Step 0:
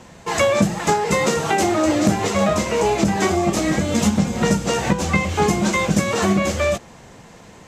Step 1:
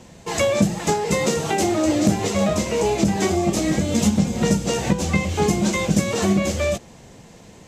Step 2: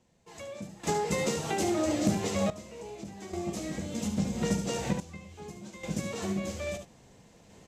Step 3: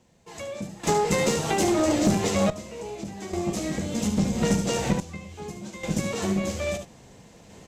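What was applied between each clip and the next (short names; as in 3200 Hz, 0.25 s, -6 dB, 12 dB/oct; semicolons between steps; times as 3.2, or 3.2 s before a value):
bell 1300 Hz -7.5 dB 1.6 oct
echo 72 ms -8 dB; random-step tremolo 1.2 Hz, depth 85%; gain -9 dB
tube stage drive 21 dB, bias 0.45; gain +8.5 dB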